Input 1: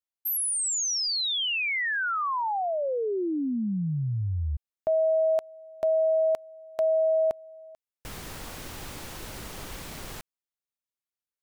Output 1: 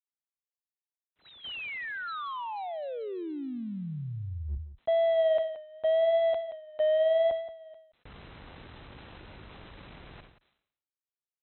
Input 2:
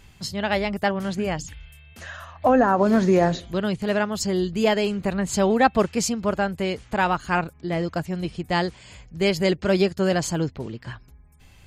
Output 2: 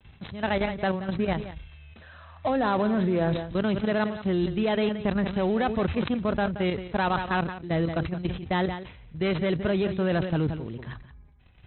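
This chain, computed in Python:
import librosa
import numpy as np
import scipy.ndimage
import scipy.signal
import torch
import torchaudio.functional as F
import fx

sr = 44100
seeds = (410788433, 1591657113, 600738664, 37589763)

y = fx.dead_time(x, sr, dead_ms=0.12)
y = scipy.signal.sosfilt(scipy.signal.butter(2, 42.0, 'highpass', fs=sr, output='sos'), y)
y = fx.low_shelf(y, sr, hz=110.0, db=6.0)
y = fx.level_steps(y, sr, step_db=12)
y = fx.vibrato(y, sr, rate_hz=0.85, depth_cents=64.0)
y = fx.brickwall_lowpass(y, sr, high_hz=4100.0)
y = y + 10.0 ** (-14.0 / 20.0) * np.pad(y, (int(176 * sr / 1000.0), 0))[:len(y)]
y = fx.sustainer(y, sr, db_per_s=89.0)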